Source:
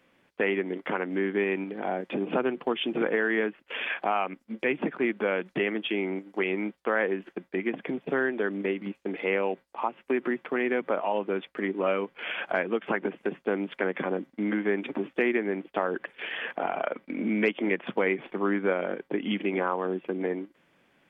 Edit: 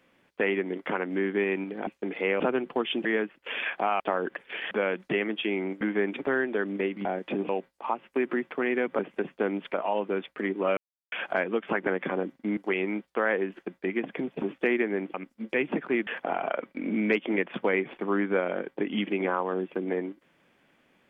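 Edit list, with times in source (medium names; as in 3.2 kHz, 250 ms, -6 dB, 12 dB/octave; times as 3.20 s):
1.87–2.31 s: swap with 8.90–9.43 s
2.96–3.29 s: delete
4.24–5.17 s: swap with 15.69–16.40 s
6.27–8.12 s: swap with 14.51–14.97 s
11.96–12.31 s: mute
13.06–13.81 s: move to 10.93 s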